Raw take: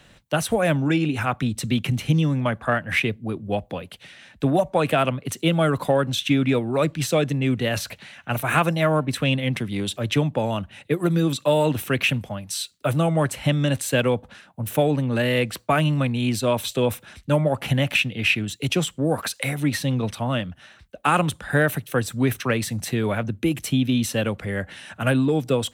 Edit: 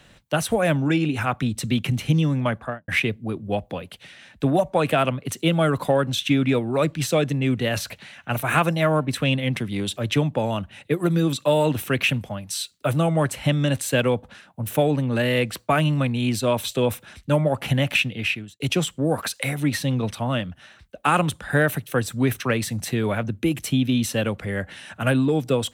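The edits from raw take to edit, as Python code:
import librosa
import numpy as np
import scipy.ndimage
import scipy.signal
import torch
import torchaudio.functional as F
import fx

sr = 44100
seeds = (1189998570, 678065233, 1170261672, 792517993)

y = fx.studio_fade_out(x, sr, start_s=2.52, length_s=0.36)
y = fx.edit(y, sr, fx.fade_out_span(start_s=18.1, length_s=0.5), tone=tone)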